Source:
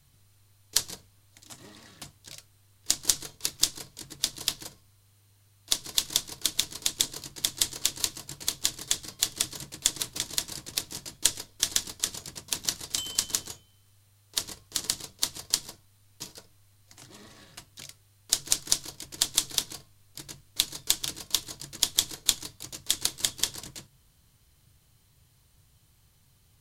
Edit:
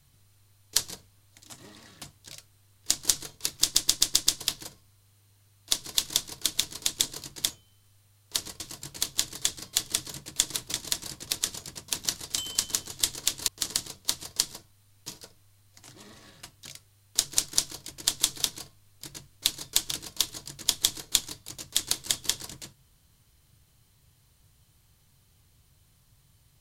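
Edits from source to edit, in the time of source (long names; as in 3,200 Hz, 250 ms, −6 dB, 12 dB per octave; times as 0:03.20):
0:03.62: stutter in place 0.13 s, 6 plays
0:07.50–0:08.06: swap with 0:13.52–0:14.62
0:10.87–0:12.01: remove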